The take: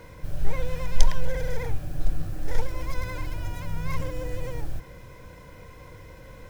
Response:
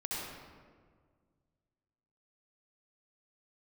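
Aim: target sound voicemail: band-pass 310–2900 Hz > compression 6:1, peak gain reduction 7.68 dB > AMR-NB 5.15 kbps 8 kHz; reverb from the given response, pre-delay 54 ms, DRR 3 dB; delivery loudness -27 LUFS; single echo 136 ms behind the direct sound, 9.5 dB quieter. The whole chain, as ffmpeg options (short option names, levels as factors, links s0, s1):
-filter_complex "[0:a]aecho=1:1:136:0.335,asplit=2[s0][s1];[1:a]atrim=start_sample=2205,adelay=54[s2];[s1][s2]afir=irnorm=-1:irlink=0,volume=0.473[s3];[s0][s3]amix=inputs=2:normalize=0,highpass=310,lowpass=2900,acompressor=threshold=0.0158:ratio=6,volume=7.5" -ar 8000 -c:a libopencore_amrnb -b:a 5150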